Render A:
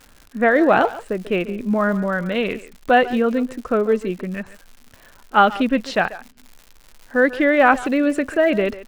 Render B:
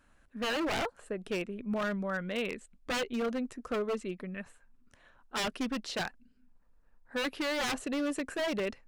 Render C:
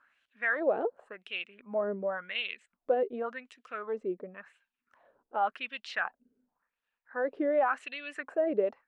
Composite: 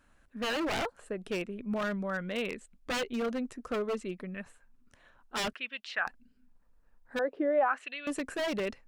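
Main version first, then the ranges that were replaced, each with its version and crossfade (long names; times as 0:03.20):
B
0:05.53–0:06.07: punch in from C
0:07.19–0:08.07: punch in from C
not used: A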